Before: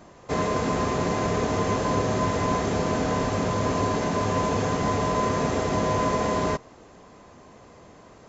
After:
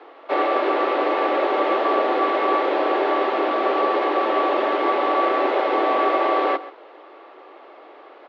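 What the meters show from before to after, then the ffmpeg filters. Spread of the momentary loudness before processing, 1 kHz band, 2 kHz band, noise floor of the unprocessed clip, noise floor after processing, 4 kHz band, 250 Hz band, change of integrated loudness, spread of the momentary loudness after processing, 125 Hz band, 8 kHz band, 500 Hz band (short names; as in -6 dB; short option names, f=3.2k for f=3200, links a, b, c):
1 LU, +6.5 dB, +6.0 dB, -50 dBFS, -45 dBFS, +3.0 dB, -0.5 dB, +4.5 dB, 2 LU, under -35 dB, n/a, +6.0 dB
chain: -af "highpass=f=190:t=q:w=0.5412,highpass=f=190:t=q:w=1.307,lowpass=f=3.6k:t=q:w=0.5176,lowpass=f=3.6k:t=q:w=0.7071,lowpass=f=3.6k:t=q:w=1.932,afreqshift=130,aecho=1:1:133:0.15,volume=5.5dB"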